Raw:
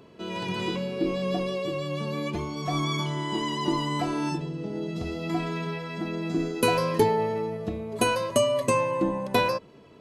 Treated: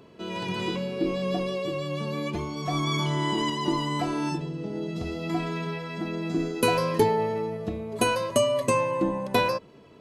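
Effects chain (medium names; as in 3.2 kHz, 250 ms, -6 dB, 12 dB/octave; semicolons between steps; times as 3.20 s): 2.87–3.50 s: level flattener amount 100%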